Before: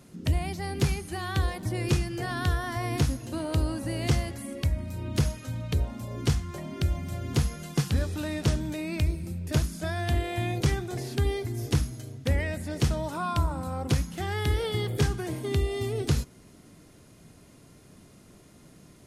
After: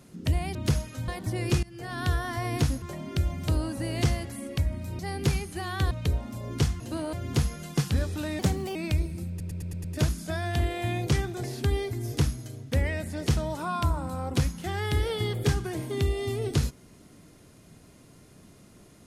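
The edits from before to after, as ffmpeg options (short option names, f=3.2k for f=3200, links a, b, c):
-filter_complex "[0:a]asplit=17[a][b][c][d][e][f][g][h][i][j][k][l][m][n][o][p][q];[a]atrim=end=0.552[r];[b]atrim=start=5.048:end=5.582[s];[c]atrim=start=1.468:end=2.02,asetpts=PTS-STARTPTS,afade=t=out:st=0.548:d=0.004:c=hsin:silence=0.0944061[t];[d]atrim=start=2.02:end=3.212,asetpts=PTS-STARTPTS,afade=t=in:d=0.46:silence=0.0944061[u];[e]atrim=start=6.468:end=7.132[v];[f]atrim=start=3.538:end=5.052[w];[g]atrim=start=0.548:end=1.472[x];[h]atrim=start=5.578:end=6.472[y];[i]atrim=start=3.208:end=3.542[z];[j]atrim=start=7.128:end=8.394[aa];[k]atrim=start=8.39:end=8.84,asetpts=PTS-STARTPTS,asetrate=54684,aresample=44100,atrim=end_sample=16004,asetpts=PTS-STARTPTS[ab];[l]atrim=start=8.836:end=9.492[ac];[m]atrim=start=9.378:end=9.492[ad];[n]atrim=start=9.378:end=9.492[ae];[o]atrim=start=9.378:end=9.492[af];[p]atrim=start=9.378:end=9.492[ag];[q]atrim=start=9.378[ah];[r][s]acrossfade=d=0.004:c1=hsin:c2=hsin[ai];[t][u]concat=n=2:v=0:a=1[aj];[ai][aj]acrossfade=d=0.004:c1=hsin:c2=hsin[ak];[ak][v]acrossfade=d=0.004:c1=hsin:c2=hsin[al];[al][w]acrossfade=d=0.004:c1=hsin:c2=hsin[am];[am][x]acrossfade=d=0.004:c1=hsin:c2=hsin[an];[an][y]acrossfade=d=0.004:c1=hsin:c2=hsin[ao];[ao][z]acrossfade=d=0.004:c1=hsin:c2=hsin[ap];[ap][aa]acrossfade=d=0.004:c1=hsin:c2=hsin[aq];[aq][ab]acrossfade=d=0.004:c1=hsin:c2=hsin[ar];[ar][ac]acrossfade=d=0.004:c1=hsin:c2=hsin[as];[as][ad]acrossfade=d=0.004:c1=hsin:c2=hsin[at];[at][ae]acrossfade=d=0.004:c1=hsin:c2=hsin[au];[au][af]acrossfade=d=0.004:c1=hsin:c2=hsin[av];[av][ag]acrossfade=d=0.004:c1=hsin:c2=hsin[aw];[aw][ah]acrossfade=d=0.004:c1=hsin:c2=hsin"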